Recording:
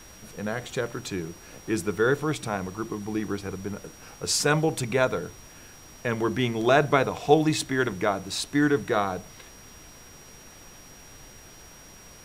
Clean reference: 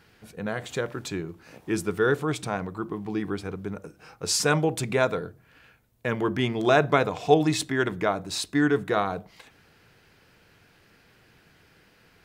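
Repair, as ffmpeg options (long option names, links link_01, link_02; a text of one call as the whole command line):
ffmpeg -i in.wav -af "bandreject=frequency=5700:width=30,afftdn=noise_reduction=11:noise_floor=-48" out.wav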